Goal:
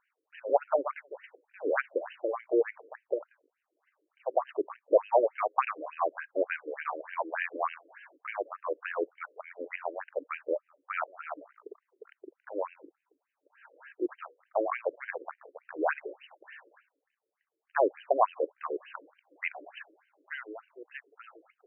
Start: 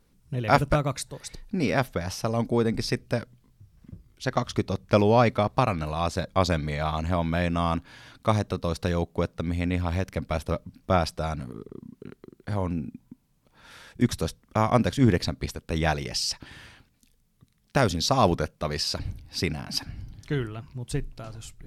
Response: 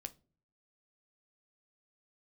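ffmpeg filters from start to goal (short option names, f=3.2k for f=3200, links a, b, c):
-filter_complex "[0:a]asplit=2[a][b];[b]adelay=180,highpass=300,lowpass=3.4k,asoftclip=type=hard:threshold=-13dB,volume=-28dB[c];[a][c]amix=inputs=2:normalize=0,afftfilt=real='re*between(b*sr/1024,400*pow(2200/400,0.5+0.5*sin(2*PI*3.4*pts/sr))/1.41,400*pow(2200/400,0.5+0.5*sin(2*PI*3.4*pts/sr))*1.41)':imag='im*between(b*sr/1024,400*pow(2200/400,0.5+0.5*sin(2*PI*3.4*pts/sr))/1.41,400*pow(2200/400,0.5+0.5*sin(2*PI*3.4*pts/sr))*1.41)':win_size=1024:overlap=0.75,volume=1.5dB"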